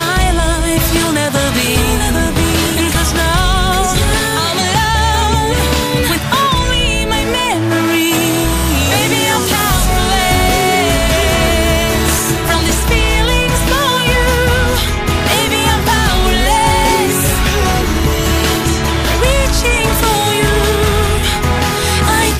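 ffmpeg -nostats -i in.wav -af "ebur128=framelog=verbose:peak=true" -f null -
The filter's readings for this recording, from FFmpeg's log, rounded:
Integrated loudness:
  I:         -12.5 LUFS
  Threshold: -22.5 LUFS
Loudness range:
  LRA:         0.9 LU
  Threshold: -32.5 LUFS
  LRA low:   -12.9 LUFS
  LRA high:  -12.0 LUFS
True peak:
  Peak:       -1.3 dBFS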